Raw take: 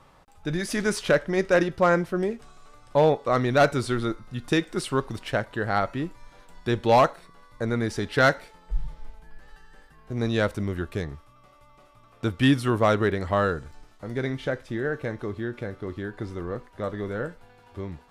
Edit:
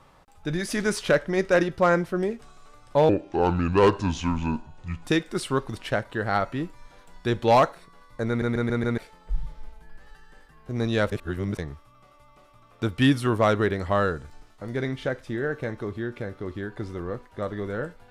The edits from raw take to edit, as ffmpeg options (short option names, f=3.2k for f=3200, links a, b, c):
-filter_complex "[0:a]asplit=10[a][b][c][d][e][f][g][h][i][j];[a]atrim=end=3.094[k];[b]atrim=start=3.09:end=4.46,asetpts=PTS-STARTPTS,asetrate=30870,aresample=44100[l];[c]atrim=start=4.456:end=7.832[m];[d]atrim=start=7.688:end=7.832[n];[e]atrim=start=7.688:end=7.832[o];[f]atrim=start=7.688:end=7.832[p];[g]atrim=start=7.688:end=7.832[q];[h]atrim=start=8.388:end=10.532[r];[i]atrim=start=10.528:end=11.002,asetpts=PTS-STARTPTS,areverse[s];[j]atrim=start=10.998[t];[k][l]acrossfade=d=0.004:c1=hsin:c2=hsin[u];[u][m]acrossfade=d=0.004:c1=hsin:c2=hsin[v];[v][n]acrossfade=d=0.004:c1=hsin:c2=hsin[w];[w][o]acrossfade=d=0.004:c1=hsin:c2=hsin[x];[x][p]acrossfade=d=0.004:c1=hsin:c2=hsin[y];[y][q]acrossfade=d=0.004:c1=hsin:c2=hsin[z];[z][r]acrossfade=d=0.004:c1=hsin:c2=hsin[aa];[aa][s]acrossfade=d=0.004:c1=hsin:c2=hsin[ab];[ab][t]acrossfade=d=0.004:c1=hsin:c2=hsin"